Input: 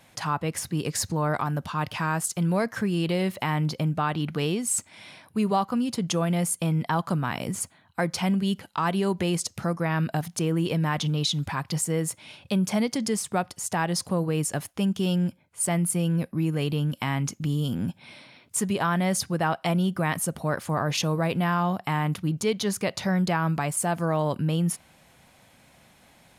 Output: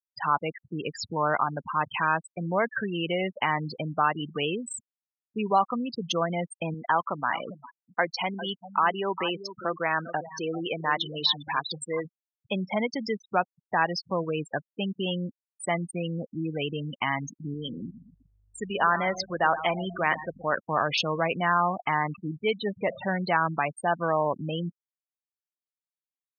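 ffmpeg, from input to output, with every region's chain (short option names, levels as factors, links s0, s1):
-filter_complex "[0:a]asettb=1/sr,asplit=3[s0][s1][s2];[s0]atrim=end=6.744[s3];[s1]atrim=start=6.74:end=12.05,asetpts=PTS-STARTPTS,afade=t=in:d=0.004:c=qsin,afade=t=out:st=5.306:d=0.004:c=qsin,bass=f=250:g=-8,treble=f=4000:g=1,aecho=1:1:401:0.266,atrim=end_sample=234171[s4];[s2]atrim=start=12.046[s5];[s3][s4]acrossfade=d=0.004:c1=hsin:c2=qsin[s6];[s6][s5]acrossfade=d=0.004:c1=qsin:c2=hsin,asettb=1/sr,asplit=3[s7][s8][s9];[s7]atrim=end=17.544[s10];[s8]atrim=start=17.54:end=20.55,asetpts=PTS-STARTPTS,afade=t=in:d=0.004:c=qsin,afade=t=out:st=3.006:d=0.004:c=qsin,asplit=2[s11][s12];[s12]adelay=120,lowpass=f=4300:p=1,volume=0.266,asplit=2[s13][s14];[s14]adelay=120,lowpass=f=4300:p=1,volume=0.47,asplit=2[s15][s16];[s16]adelay=120,lowpass=f=4300:p=1,volume=0.47,asplit=2[s17][s18];[s18]adelay=120,lowpass=f=4300:p=1,volume=0.47,asplit=2[s19][s20];[s20]adelay=120,lowpass=f=4300:p=1,volume=0.47[s21];[s11][s13][s15][s17][s19][s21]amix=inputs=6:normalize=0,atrim=end_sample=132741,aeval=exprs='val(0)+0.01*(sin(2*PI*50*n/s)+sin(2*PI*2*50*n/s)/2+sin(2*PI*3*50*n/s)/3+sin(2*PI*4*50*n/s)/4+sin(2*PI*5*50*n/s)/5)':c=same,equalizer=f=93:w=0.6:g=-5.5[s22];[s9]atrim=start=20.546[s23];[s10][s22]acrossfade=d=0.004:c1=hsin:c2=qsin[s24];[s24][s23]acrossfade=d=0.004:c1=qsin:c2=hsin,asettb=1/sr,asplit=3[s25][s26][s27];[s25]atrim=end=22.594[s28];[s26]atrim=start=22.59:end=23.15,asetpts=PTS-STARTPTS,afade=t=in:d=0.004:c=qsin,afade=t=out:st=0.556:d=0.004:c=qsin,aeval=exprs='val(0)+0.5*0.0224*sgn(val(0))':c=same,highshelf=f=2300:g=-9[s29];[s27]atrim=start=23.146[s30];[s28][s29]acrossfade=d=0.004:c1=hsin:c2=qsin[s31];[s31][s30]acrossfade=d=0.004:c1=qsin:c2=hsin,lowpass=4200,afftfilt=real='re*gte(hypot(re,im),0.0447)':imag='im*gte(hypot(re,im),0.0447)':win_size=1024:overlap=0.75,highpass=f=870:p=1,volume=2"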